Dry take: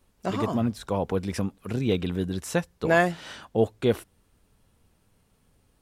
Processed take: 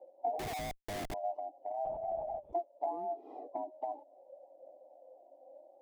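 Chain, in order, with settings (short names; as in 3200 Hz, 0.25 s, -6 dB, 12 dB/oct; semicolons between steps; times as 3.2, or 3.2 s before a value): band-swap scrambler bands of 500 Hz; elliptic band-pass 280–780 Hz, stop band 40 dB; harmonic-percussive split percussive -12 dB; limiter -26 dBFS, peak gain reduction 8.5 dB; compressor 20:1, threshold -44 dBFS, peak gain reduction 15 dB; phaser 0.64 Hz, delay 4 ms, feedback 37%; 0.39–1.14 Schmitt trigger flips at -51 dBFS; 1.85–2.53 LPC vocoder at 8 kHz whisper; gain +9.5 dB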